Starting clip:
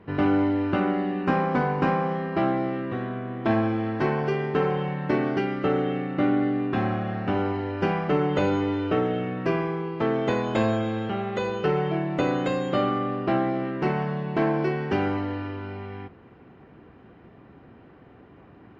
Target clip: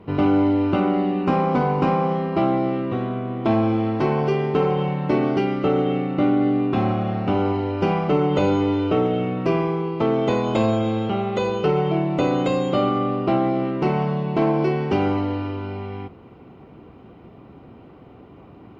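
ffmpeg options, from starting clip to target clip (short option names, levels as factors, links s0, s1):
-filter_complex "[0:a]asplit=2[s0][s1];[s1]alimiter=limit=0.126:level=0:latency=1,volume=0.891[s2];[s0][s2]amix=inputs=2:normalize=0,equalizer=f=1700:t=o:w=0.34:g=-13.5"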